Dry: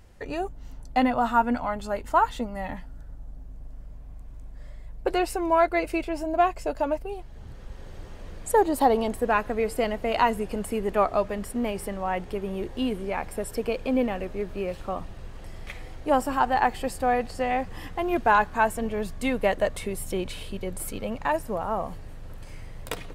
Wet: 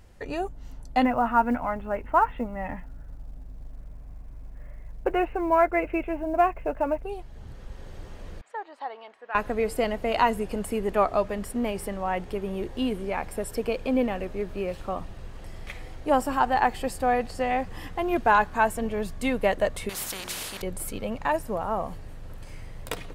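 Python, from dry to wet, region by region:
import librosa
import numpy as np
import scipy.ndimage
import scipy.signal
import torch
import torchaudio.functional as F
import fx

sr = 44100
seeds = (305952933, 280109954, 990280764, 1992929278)

y = fx.chain(x, sr, fx.steep_lowpass(hz=2700.0, slope=48),
    fx.quant_companded(bits=8), at=(1.05, 7.04))
y = fx.chain(y, sr, fx.highpass(hz=1400.0, slope=12),
    fx.spacing_loss(db_at_10k=39), at=(8.41, 9.35))
y = fx.chain(y, sr, fx.hum_notches(base_hz=60, count=8),
    fx.spectral_comp(ratio=4.0), at=(19.89, 20.62))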